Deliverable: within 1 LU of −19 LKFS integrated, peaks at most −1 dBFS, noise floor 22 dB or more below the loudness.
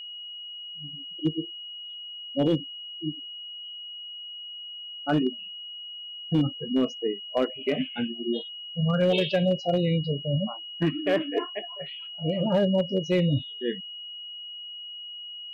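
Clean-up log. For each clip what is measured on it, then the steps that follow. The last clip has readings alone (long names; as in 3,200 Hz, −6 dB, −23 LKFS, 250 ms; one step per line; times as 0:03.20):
share of clipped samples 0.3%; peaks flattened at −16.0 dBFS; interfering tone 2,900 Hz; level of the tone −37 dBFS; integrated loudness −29.0 LKFS; sample peak −16.0 dBFS; target loudness −19.0 LKFS
→ clipped peaks rebuilt −16 dBFS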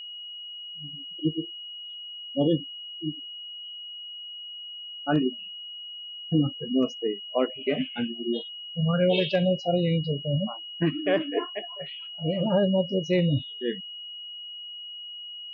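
share of clipped samples 0.0%; interfering tone 2,900 Hz; level of the tone −37 dBFS
→ notch filter 2,900 Hz, Q 30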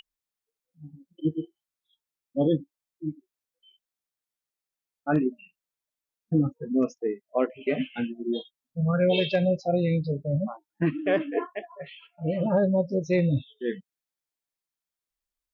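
interfering tone none found; integrated loudness −27.5 LKFS; sample peak −12.0 dBFS; target loudness −19.0 LKFS
→ level +8.5 dB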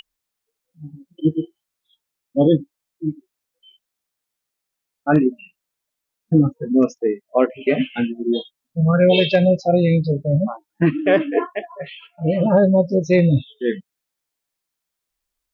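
integrated loudness −19.0 LKFS; sample peak −3.5 dBFS; background noise floor −82 dBFS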